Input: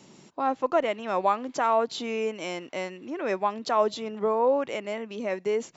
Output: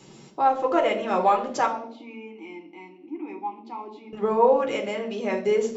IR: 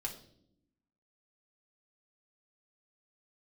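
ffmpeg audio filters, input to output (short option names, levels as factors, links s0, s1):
-filter_complex "[0:a]asettb=1/sr,asplit=3[s0][s1][s2];[s0]atrim=end=1.664[s3];[s1]atrim=start=1.66:end=4.13,asetpts=PTS-STARTPTS,afade=t=in:d=0.004:c=qsin,afade=t=out:st=2.466:d=0.004:c=qsin,asplit=3[s4][s5][s6];[s4]bandpass=f=300:t=q:w=8,volume=1[s7];[s5]bandpass=f=870:t=q:w=8,volume=0.501[s8];[s6]bandpass=f=2240:t=q:w=8,volume=0.355[s9];[s7][s8][s9]amix=inputs=3:normalize=0[s10];[s2]atrim=start=4.126[s11];[s3][s10]acrossfade=d=0.004:c1=hsin:c2=qsin[s12];[s12][s11]acrossfade=d=0.004:c1=qsin:c2=hsin[s13];[1:a]atrim=start_sample=2205,asetrate=48510,aresample=44100[s14];[s13][s14]afir=irnorm=-1:irlink=0,volume=1.78"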